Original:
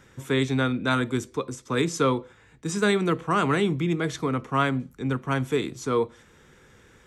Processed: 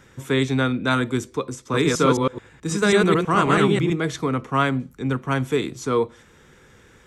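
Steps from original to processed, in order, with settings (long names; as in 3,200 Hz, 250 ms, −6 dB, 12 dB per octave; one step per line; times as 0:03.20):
0:01.63–0:03.92: delay that plays each chunk backwards 108 ms, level −1 dB
level +3 dB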